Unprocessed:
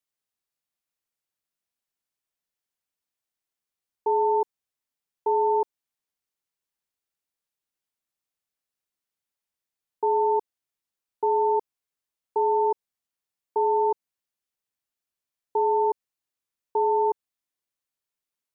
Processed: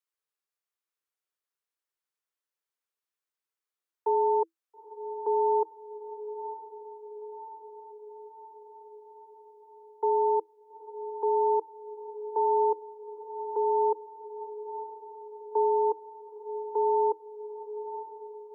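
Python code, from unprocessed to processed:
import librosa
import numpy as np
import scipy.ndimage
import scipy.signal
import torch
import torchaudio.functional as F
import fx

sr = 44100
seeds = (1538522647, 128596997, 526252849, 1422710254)

y = scipy.signal.sosfilt(scipy.signal.cheby1(6, 6, 320.0, 'highpass', fs=sr, output='sos'), x)
y = fx.echo_diffused(y, sr, ms=914, feedback_pct=65, wet_db=-12.0)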